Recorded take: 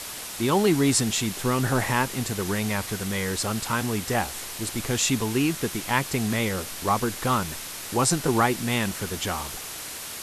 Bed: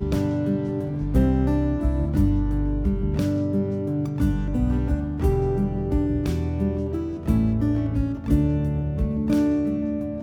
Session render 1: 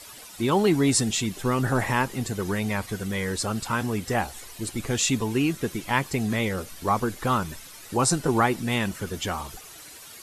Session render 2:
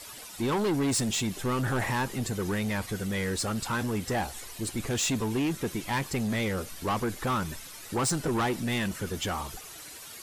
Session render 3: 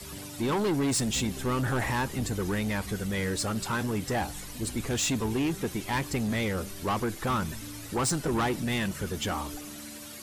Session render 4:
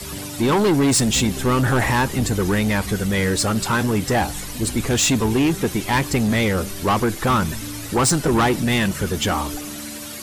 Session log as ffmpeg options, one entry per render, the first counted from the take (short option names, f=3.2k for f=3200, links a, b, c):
-af "afftdn=nr=12:nf=-36"
-af "asoftclip=type=tanh:threshold=-23.5dB"
-filter_complex "[1:a]volume=-21dB[a];[0:a][a]amix=inputs=2:normalize=0"
-af "volume=10dB"